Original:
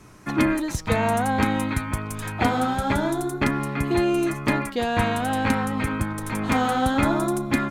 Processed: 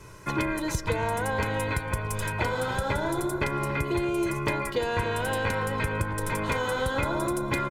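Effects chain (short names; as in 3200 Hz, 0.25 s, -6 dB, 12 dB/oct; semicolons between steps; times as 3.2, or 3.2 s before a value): comb 2 ms, depth 74%; compressor, threshold -24 dBFS, peak gain reduction 10 dB; darkening echo 0.281 s, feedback 68%, low-pass 1700 Hz, level -11.5 dB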